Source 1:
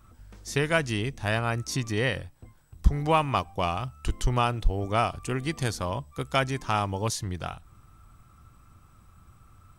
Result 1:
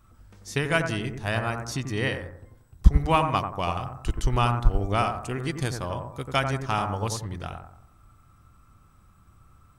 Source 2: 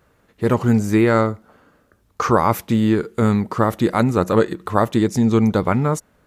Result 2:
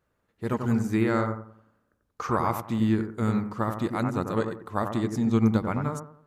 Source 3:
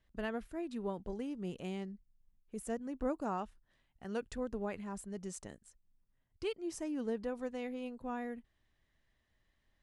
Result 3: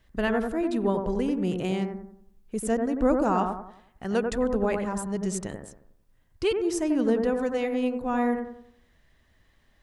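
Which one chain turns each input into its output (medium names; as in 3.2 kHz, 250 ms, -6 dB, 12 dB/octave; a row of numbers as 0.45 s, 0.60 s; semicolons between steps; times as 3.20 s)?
dynamic bell 480 Hz, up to -4 dB, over -30 dBFS, Q 1.7; on a send: bucket-brigade echo 91 ms, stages 1024, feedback 40%, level -4.5 dB; on the sum: upward expansion 1.5:1, over -29 dBFS; normalise loudness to -27 LUFS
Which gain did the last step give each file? +5.0 dB, -6.5 dB, +12.5 dB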